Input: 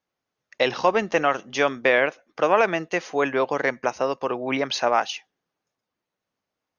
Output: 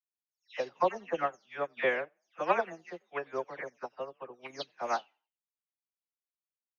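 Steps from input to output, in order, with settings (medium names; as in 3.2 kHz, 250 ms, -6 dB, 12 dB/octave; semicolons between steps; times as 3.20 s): delay that grows with frequency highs early, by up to 255 ms; frequency-shifting echo 91 ms, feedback 31%, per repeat +40 Hz, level -16.5 dB; upward expansion 2.5:1, over -34 dBFS; trim -5.5 dB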